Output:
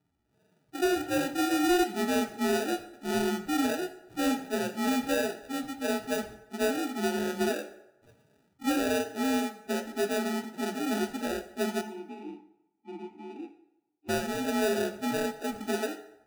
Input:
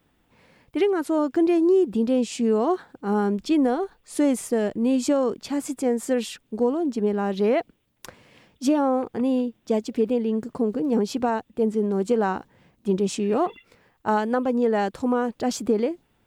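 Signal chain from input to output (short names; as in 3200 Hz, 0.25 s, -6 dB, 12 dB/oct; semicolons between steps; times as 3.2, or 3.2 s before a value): inharmonic rescaling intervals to 83%; loudest bins only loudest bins 16; sample-and-hold 41×; flange 1.5 Hz, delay 6.3 ms, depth 8.6 ms, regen -67%; 11.81–14.09 vowel filter u; reverb RT60 0.90 s, pre-delay 4 ms, DRR 8.5 dB; harmonic-percussive split harmonic +8 dB; soft clip -8.5 dBFS, distortion -22 dB; gain -8.5 dB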